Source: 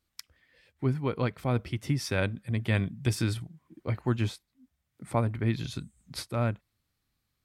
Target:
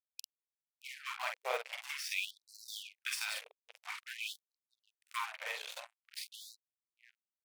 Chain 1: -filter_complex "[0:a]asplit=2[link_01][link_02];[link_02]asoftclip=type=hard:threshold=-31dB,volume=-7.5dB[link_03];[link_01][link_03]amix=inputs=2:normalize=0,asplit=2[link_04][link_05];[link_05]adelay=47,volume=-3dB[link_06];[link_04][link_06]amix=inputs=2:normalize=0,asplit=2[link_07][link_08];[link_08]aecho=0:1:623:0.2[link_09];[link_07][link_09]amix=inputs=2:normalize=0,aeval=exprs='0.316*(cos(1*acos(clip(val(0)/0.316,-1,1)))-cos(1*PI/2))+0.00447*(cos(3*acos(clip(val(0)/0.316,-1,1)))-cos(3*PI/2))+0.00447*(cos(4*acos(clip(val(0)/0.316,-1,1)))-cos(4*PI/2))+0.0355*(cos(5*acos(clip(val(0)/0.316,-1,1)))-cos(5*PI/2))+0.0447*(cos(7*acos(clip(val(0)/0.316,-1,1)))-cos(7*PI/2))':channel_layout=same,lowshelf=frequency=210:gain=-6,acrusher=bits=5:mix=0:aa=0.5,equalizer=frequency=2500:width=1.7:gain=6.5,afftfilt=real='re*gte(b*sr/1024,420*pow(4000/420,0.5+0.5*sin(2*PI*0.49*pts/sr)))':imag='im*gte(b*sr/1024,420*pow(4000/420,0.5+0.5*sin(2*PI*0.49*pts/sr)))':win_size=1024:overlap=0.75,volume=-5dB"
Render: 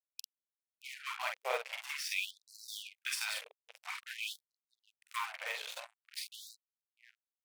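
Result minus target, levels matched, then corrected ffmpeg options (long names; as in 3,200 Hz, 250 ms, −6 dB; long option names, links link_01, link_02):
hard clipping: distortion −4 dB
-filter_complex "[0:a]asplit=2[link_01][link_02];[link_02]asoftclip=type=hard:threshold=-40dB,volume=-7.5dB[link_03];[link_01][link_03]amix=inputs=2:normalize=0,asplit=2[link_04][link_05];[link_05]adelay=47,volume=-3dB[link_06];[link_04][link_06]amix=inputs=2:normalize=0,asplit=2[link_07][link_08];[link_08]aecho=0:1:623:0.2[link_09];[link_07][link_09]amix=inputs=2:normalize=0,aeval=exprs='0.316*(cos(1*acos(clip(val(0)/0.316,-1,1)))-cos(1*PI/2))+0.00447*(cos(3*acos(clip(val(0)/0.316,-1,1)))-cos(3*PI/2))+0.00447*(cos(4*acos(clip(val(0)/0.316,-1,1)))-cos(4*PI/2))+0.0355*(cos(5*acos(clip(val(0)/0.316,-1,1)))-cos(5*PI/2))+0.0447*(cos(7*acos(clip(val(0)/0.316,-1,1)))-cos(7*PI/2))':channel_layout=same,lowshelf=frequency=210:gain=-6,acrusher=bits=5:mix=0:aa=0.5,equalizer=frequency=2500:width=1.7:gain=6.5,afftfilt=real='re*gte(b*sr/1024,420*pow(4000/420,0.5+0.5*sin(2*PI*0.49*pts/sr)))':imag='im*gte(b*sr/1024,420*pow(4000/420,0.5+0.5*sin(2*PI*0.49*pts/sr)))':win_size=1024:overlap=0.75,volume=-5dB"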